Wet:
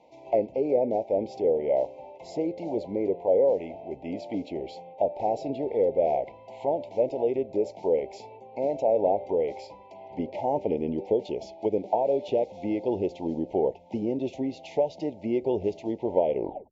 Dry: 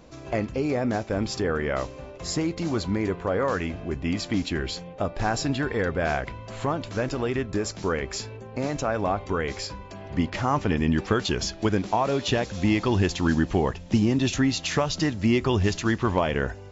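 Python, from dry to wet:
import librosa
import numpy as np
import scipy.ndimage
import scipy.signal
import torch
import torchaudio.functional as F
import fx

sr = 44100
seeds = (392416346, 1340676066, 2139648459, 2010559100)

p1 = fx.tape_stop_end(x, sr, length_s=0.37)
p2 = fx.rider(p1, sr, range_db=10, speed_s=2.0)
p3 = p1 + (p2 * 10.0 ** (-1.0 / 20.0))
p4 = scipy.signal.sosfilt(scipy.signal.cheby1(4, 1.0, [910.0, 2100.0], 'bandstop', fs=sr, output='sos'), p3)
y = fx.auto_wah(p4, sr, base_hz=510.0, top_hz=1100.0, q=2.5, full_db=-15.0, direction='down')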